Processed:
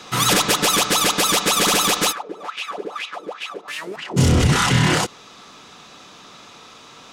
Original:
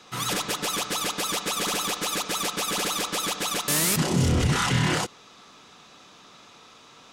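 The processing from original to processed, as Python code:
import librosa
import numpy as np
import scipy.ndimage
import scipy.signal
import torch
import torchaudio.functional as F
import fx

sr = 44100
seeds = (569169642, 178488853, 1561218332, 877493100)

y = fx.rider(x, sr, range_db=10, speed_s=2.0)
y = fx.wah_lfo(y, sr, hz=fx.line((2.11, 1.6), (4.16, 4.0)), low_hz=360.0, high_hz=2800.0, q=4.5, at=(2.11, 4.16), fade=0.02)
y = y * 10.0 ** (8.5 / 20.0)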